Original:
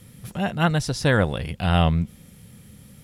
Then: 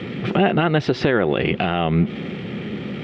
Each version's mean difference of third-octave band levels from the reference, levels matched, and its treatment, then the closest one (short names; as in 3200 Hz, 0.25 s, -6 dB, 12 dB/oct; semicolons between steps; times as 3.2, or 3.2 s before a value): 10.5 dB: G.711 law mismatch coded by mu; speaker cabinet 250–2900 Hz, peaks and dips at 370 Hz +9 dB, 550 Hz -4 dB, 980 Hz -7 dB, 1600 Hz -4 dB; compressor 6:1, threshold -31 dBFS, peak gain reduction 14 dB; maximiser +26.5 dB; gain -6 dB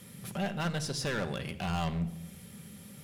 8.0 dB: HPF 210 Hz 6 dB/oct; compressor 1.5:1, threshold -40 dBFS, peak gain reduction 8.5 dB; overloaded stage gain 29.5 dB; shoebox room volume 3600 m³, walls furnished, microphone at 1.2 m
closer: second